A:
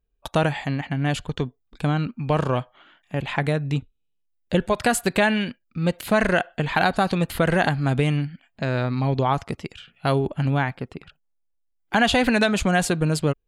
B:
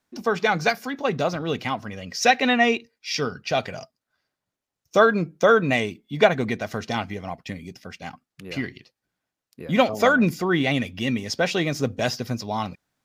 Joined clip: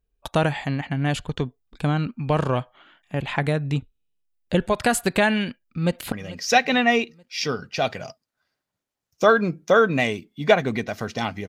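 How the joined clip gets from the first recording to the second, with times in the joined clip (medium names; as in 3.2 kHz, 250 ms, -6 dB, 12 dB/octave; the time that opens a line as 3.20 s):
A
5.48–6.12 s: echo throw 440 ms, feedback 45%, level -17.5 dB
6.12 s: go over to B from 1.85 s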